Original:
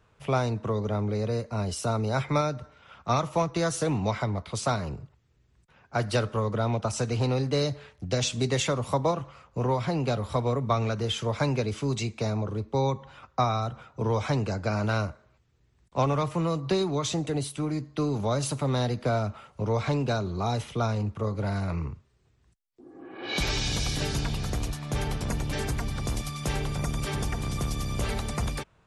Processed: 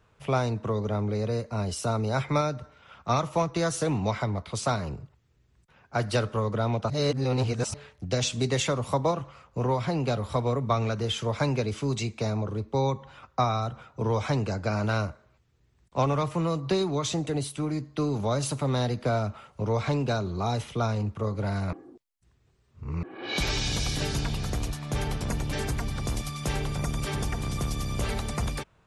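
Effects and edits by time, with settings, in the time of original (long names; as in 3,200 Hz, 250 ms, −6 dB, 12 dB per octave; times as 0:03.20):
0:06.90–0:07.74: reverse
0:21.73–0:23.03: reverse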